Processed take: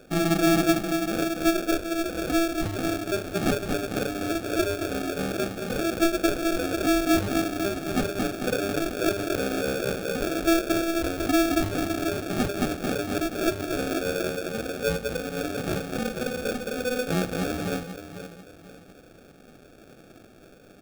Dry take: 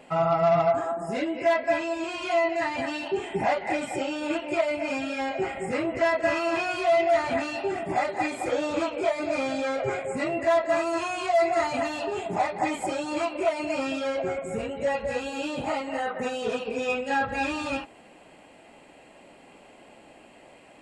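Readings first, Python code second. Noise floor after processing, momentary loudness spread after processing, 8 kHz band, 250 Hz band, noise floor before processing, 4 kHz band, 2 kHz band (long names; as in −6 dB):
−51 dBFS, 7 LU, +8.5 dB, +6.5 dB, −52 dBFS, +4.5 dB, −1.0 dB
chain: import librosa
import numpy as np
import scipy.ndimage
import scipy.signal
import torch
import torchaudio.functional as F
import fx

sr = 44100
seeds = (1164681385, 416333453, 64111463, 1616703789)

y = fx.echo_wet_bandpass(x, sr, ms=493, feedback_pct=33, hz=600.0, wet_db=-8.0)
y = fx.sample_hold(y, sr, seeds[0], rate_hz=1000.0, jitter_pct=0)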